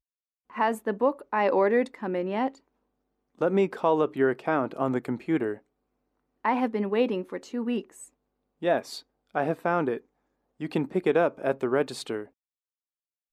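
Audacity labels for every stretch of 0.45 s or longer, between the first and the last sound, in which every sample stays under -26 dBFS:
2.480000	3.410000	silence
5.530000	6.450000	silence
7.790000	8.640000	silence
8.790000	9.350000	silence
9.970000	10.620000	silence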